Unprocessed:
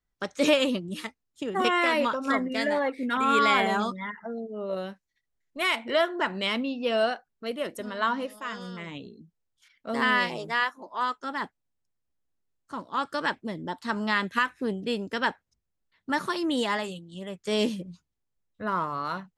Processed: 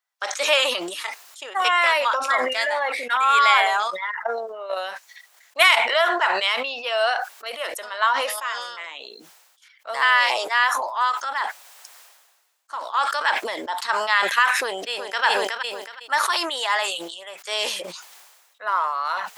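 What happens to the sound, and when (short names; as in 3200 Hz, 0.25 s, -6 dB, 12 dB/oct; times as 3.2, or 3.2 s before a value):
3.79–5.94 transient shaper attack +11 dB, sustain -10 dB
14.52–15.25 echo throw 0.37 s, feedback 25%, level -8 dB
whole clip: HPF 700 Hz 24 dB/oct; sustainer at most 42 dB/s; gain +6.5 dB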